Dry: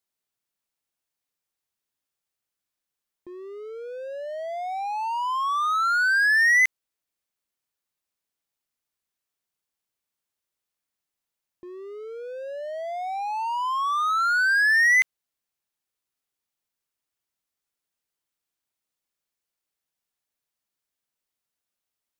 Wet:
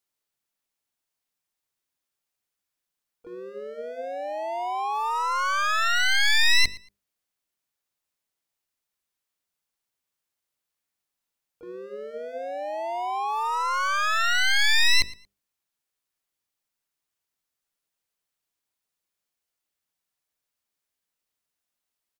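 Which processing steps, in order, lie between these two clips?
one-sided fold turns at -24.5 dBFS; notches 50/100/150/200/250/300/350/400/450/500 Hz; harmoniser -12 st -18 dB, +5 st -4 dB; feedback echo 0.115 s, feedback 20%, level -21 dB

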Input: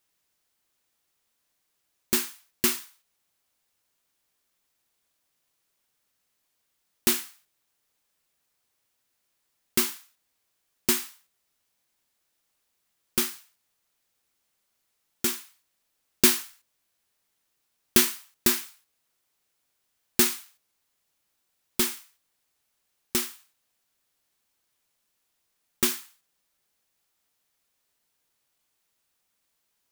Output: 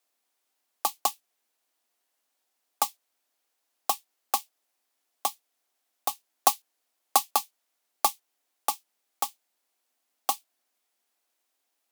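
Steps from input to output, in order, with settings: bell 200 Hz +6.5 dB 0.69 oct; frequency shift +89 Hz; vibrato 15 Hz 73 cents; wide varispeed 2.51×; gain +1.5 dB

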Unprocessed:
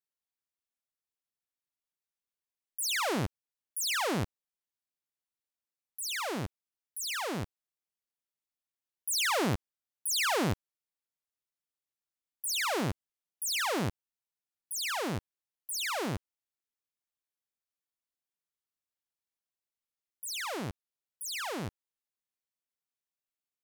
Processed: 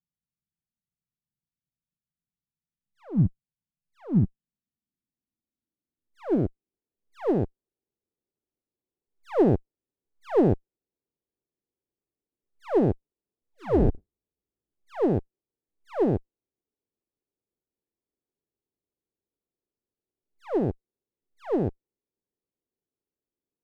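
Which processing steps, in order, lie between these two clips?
13.51–14.72 octaver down 2 oct, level +3 dB; in parallel at -2 dB: limiter -30.5 dBFS, peak gain reduction 9.5 dB; on the sum: low-pass sweep 170 Hz -> 400 Hz, 3.76–6.94; running maximum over 17 samples; gain +5 dB

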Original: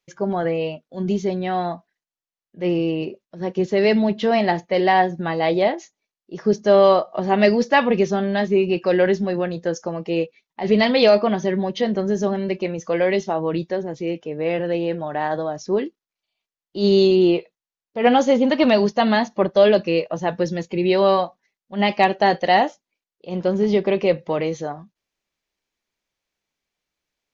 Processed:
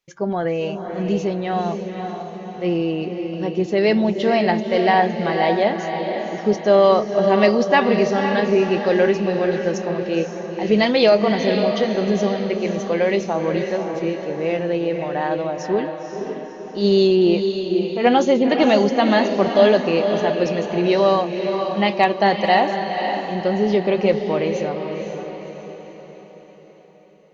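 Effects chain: diffused feedback echo 0.52 s, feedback 49%, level -6 dB

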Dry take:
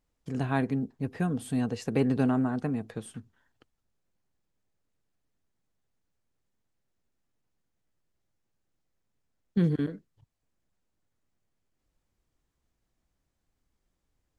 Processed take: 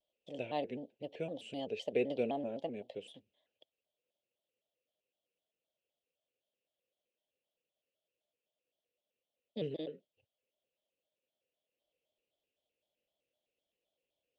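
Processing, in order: double band-pass 1300 Hz, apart 2.4 oct; shaped vibrato square 3.9 Hz, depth 160 cents; gain +6.5 dB

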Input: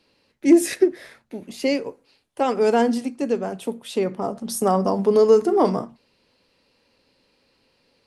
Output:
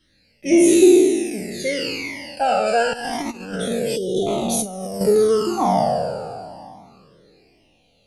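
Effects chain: spectral trails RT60 2.50 s; thirty-one-band EQ 250 Hz -6 dB, 400 Hz -3 dB, 1000 Hz -10 dB; 2.93–5.01 negative-ratio compressor -23 dBFS, ratio -0.5; phaser stages 12, 0.28 Hz, lowest notch 340–1700 Hz; 3.96–4.27 spectral delete 760–2900 Hz; cascading flanger falling 0.92 Hz; gain +7.5 dB

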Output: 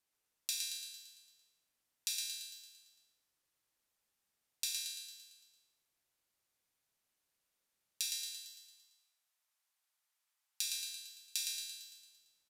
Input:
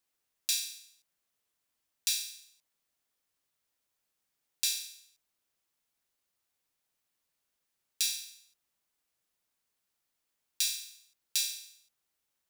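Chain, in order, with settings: 8.09–10.64 HPF 720 Hz 24 dB/oct; compressor 3:1, threshold -33 dBFS, peak gain reduction 6.5 dB; feedback echo 0.113 s, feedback 57%, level -4.5 dB; downsampling 32000 Hz; gain -2.5 dB

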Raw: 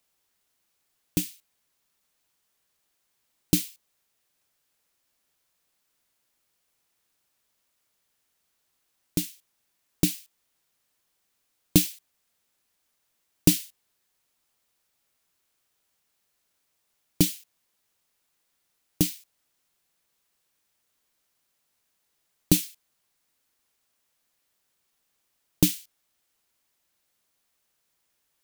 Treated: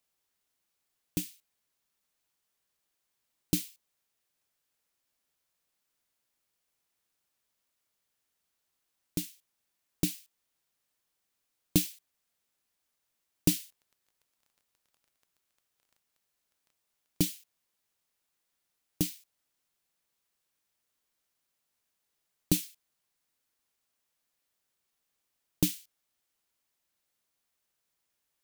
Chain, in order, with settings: 13.61–17.28 crackle 14/s -44 dBFS; gain -6.5 dB

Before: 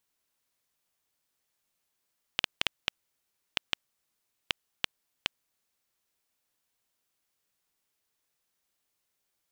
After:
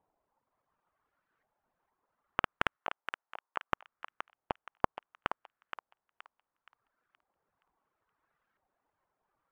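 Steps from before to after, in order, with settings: half-waves squared off; reverb removal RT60 2 s; LFO low-pass saw up 0.7 Hz 770–1600 Hz; in parallel at -3 dB: soft clip -21 dBFS, distortion -5 dB; 2.76–3.72 on the sum: band-pass 1100 Hz, Q 0.76; on a send: thinning echo 0.472 s, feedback 39%, high-pass 920 Hz, level -6.5 dB; on the sum: gain -1.5 dB

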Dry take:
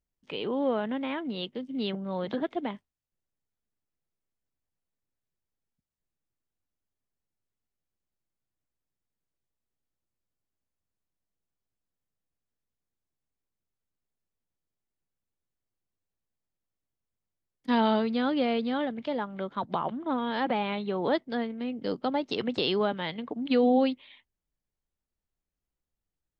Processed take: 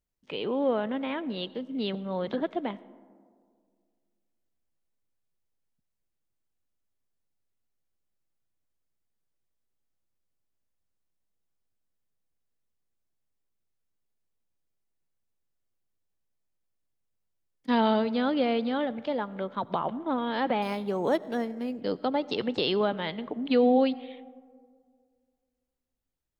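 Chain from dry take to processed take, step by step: bell 540 Hz +2 dB; on a send at -19 dB: reverb RT60 2.0 s, pre-delay 45 ms; 20.62–21.81 on the sum: decimation joined by straight lines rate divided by 6×

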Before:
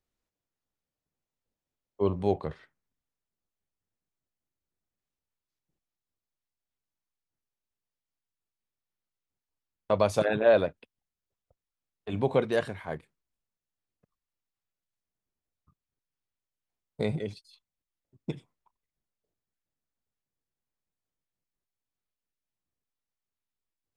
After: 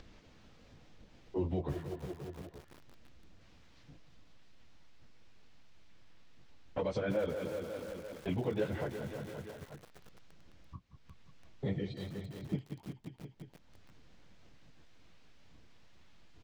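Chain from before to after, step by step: in parallel at +1 dB: limiter -21.5 dBFS, peak gain reduction 10.5 dB; on the sum: short-mantissa float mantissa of 4-bit; on a send: feedback echo 0.256 s, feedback 56%, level -15 dB; on the sum: compressor 2.5:1, threshold -27 dBFS, peak gain reduction 9.5 dB; plain phase-vocoder stretch 0.63×; bell 1100 Hz -5 dB 2 oct; speed mistake 48 kHz file played as 44.1 kHz; notch 390 Hz, Q 12; upward compressor, threshold -31 dBFS; air absorption 180 m; lo-fi delay 0.338 s, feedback 80%, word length 7-bit, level -13 dB

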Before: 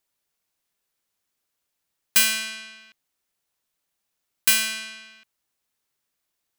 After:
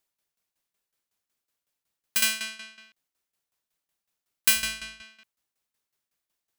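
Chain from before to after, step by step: 4.55–5.02 octaver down 2 oct, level +3 dB; tremolo saw down 5.4 Hz, depth 80%

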